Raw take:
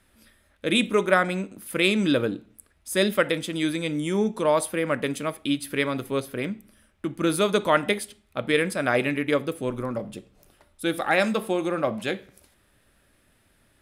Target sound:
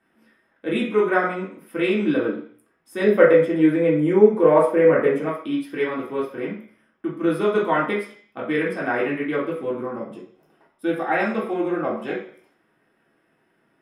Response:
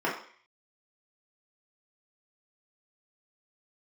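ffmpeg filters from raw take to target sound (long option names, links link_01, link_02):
-filter_complex "[0:a]asettb=1/sr,asplit=3[link_01][link_02][link_03];[link_01]atrim=end=3.044[link_04];[link_02]atrim=start=3.04:end=5.26,asetpts=PTS-STARTPTS,afade=type=in:duration=0.004:curve=qsin,afade=type=out:start_time=2.216:duration=0.004:curve=qsin,equalizer=frequency=125:width_type=o:width=1:gain=7,equalizer=frequency=500:width_type=o:width=1:gain=11,equalizer=frequency=2000:width_type=o:width=1:gain=5,equalizer=frequency=4000:width_type=o:width=1:gain=-7[link_05];[link_03]atrim=start=5.256[link_06];[link_04][link_05]acrossfade=duration=0.004:curve1=hsin:curve2=qsin[link_07];[link_07][link_06]acrossfade=duration=0.004:curve1=qsin:curve2=hsin[link_08];[1:a]atrim=start_sample=2205[link_09];[link_08][link_09]afir=irnorm=-1:irlink=0,volume=-11.5dB"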